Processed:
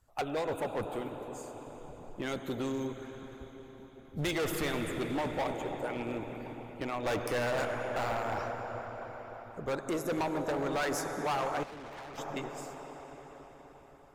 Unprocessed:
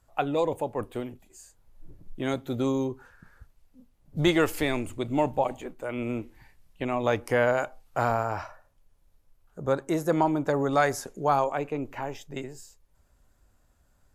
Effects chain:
0:07.06–0:07.98: leveller curve on the samples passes 1
on a send at −5 dB: convolution reverb RT60 5.6 s, pre-delay 25 ms
0:11.63–0:12.18: on the sum: tube saturation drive 39 dB, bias 0.6
harmonic and percussive parts rebalanced harmonic −10 dB
gain into a clipping stage and back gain 28.5 dB

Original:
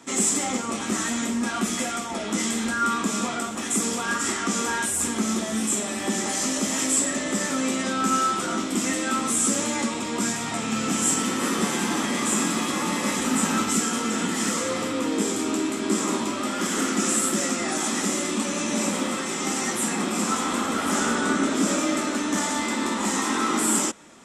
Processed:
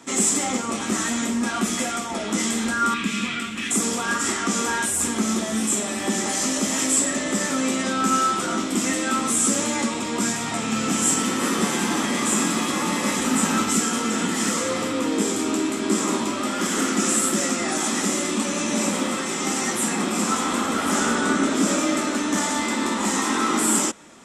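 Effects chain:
0:02.94–0:03.71: drawn EQ curve 210 Hz 0 dB, 730 Hz −15 dB, 2,500 Hz +9 dB, 6,300 Hz −7 dB
level +2 dB

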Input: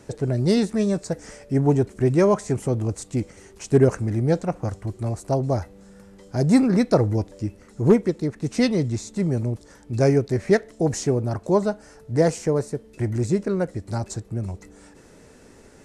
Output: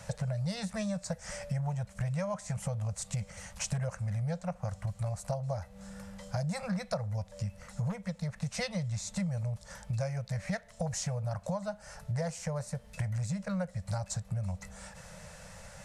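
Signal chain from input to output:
elliptic band-stop filter 190–540 Hz, stop band 40 dB
downward compressor 10 to 1, threshold −35 dBFS, peak gain reduction 20.5 dB
level +4 dB

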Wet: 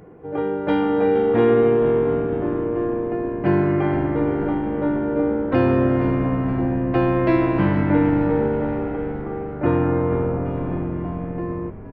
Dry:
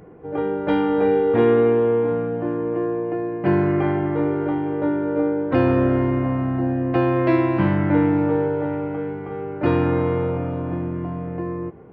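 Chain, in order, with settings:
0:09.21–0:10.44: low-pass filter 2,200 Hz → 1,600 Hz 12 dB per octave
echo with shifted repeats 469 ms, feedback 54%, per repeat −73 Hz, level −11.5 dB

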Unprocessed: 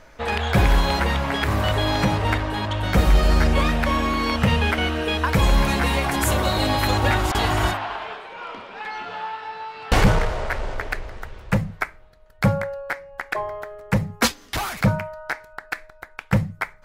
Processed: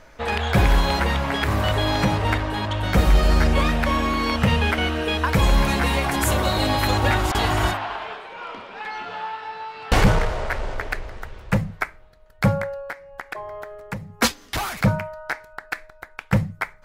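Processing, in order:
0:12.88–0:14.19: downward compressor 4 to 1, threshold −30 dBFS, peak gain reduction 13 dB

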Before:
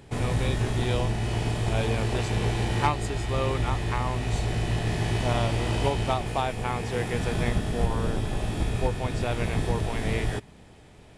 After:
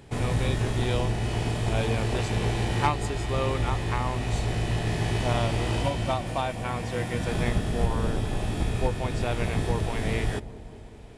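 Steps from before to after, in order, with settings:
0:05.82–0:07.29: notch comb filter 420 Hz
delay with a low-pass on its return 192 ms, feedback 74%, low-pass 880 Hz, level −16 dB

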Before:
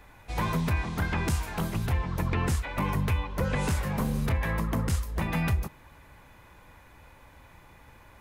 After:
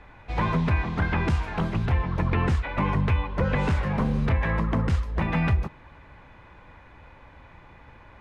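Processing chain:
low-pass filter 3,100 Hz 12 dB per octave
level +4 dB

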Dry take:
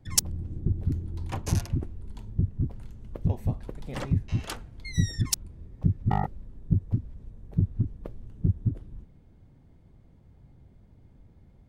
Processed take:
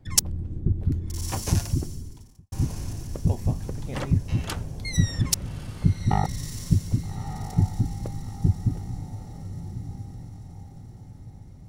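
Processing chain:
0:04.57–0:04.97: parametric band 12,000 Hz +12 dB 2 octaves
feedback delay with all-pass diffusion 1,250 ms, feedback 42%, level −9.5 dB
0:01.92–0:02.52: fade out quadratic
level +3 dB

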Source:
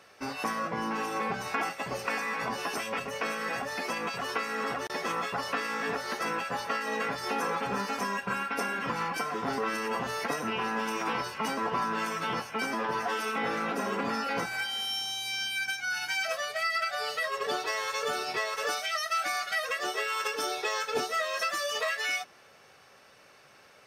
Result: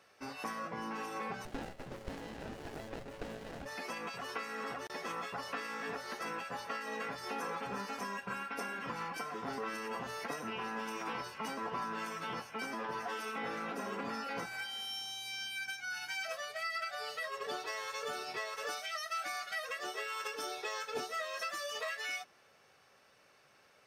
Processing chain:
0:01.45–0:03.66: windowed peak hold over 33 samples
level −8.5 dB

